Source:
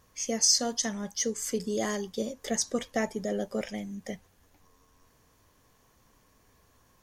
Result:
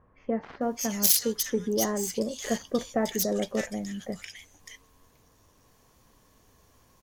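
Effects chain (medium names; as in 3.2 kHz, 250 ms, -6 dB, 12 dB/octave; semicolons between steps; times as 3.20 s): self-modulated delay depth 0.11 ms; bands offset in time lows, highs 610 ms, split 1.7 kHz; trim +3 dB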